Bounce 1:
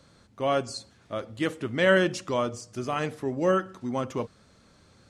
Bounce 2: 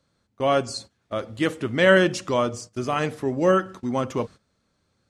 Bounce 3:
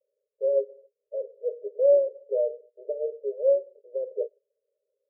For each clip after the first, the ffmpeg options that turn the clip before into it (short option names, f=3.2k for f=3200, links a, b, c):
-af "agate=range=-17dB:threshold=-44dB:ratio=16:detection=peak,volume=4.5dB"
-af "asuperpass=centerf=500:order=20:qfactor=2.3"